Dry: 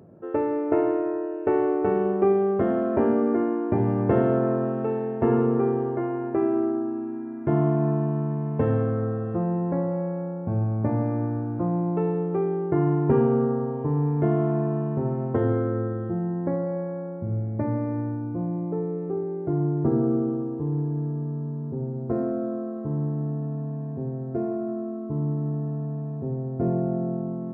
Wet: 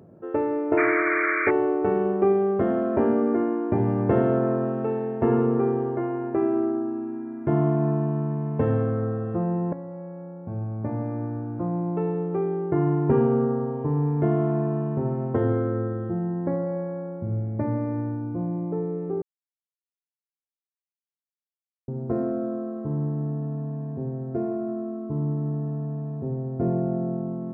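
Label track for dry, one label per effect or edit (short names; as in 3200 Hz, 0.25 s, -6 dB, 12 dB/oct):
0.770000	1.510000	painted sound noise 1100–2400 Hz -25 dBFS
9.730000	13.670000	fade in equal-power, from -12 dB
19.220000	21.880000	mute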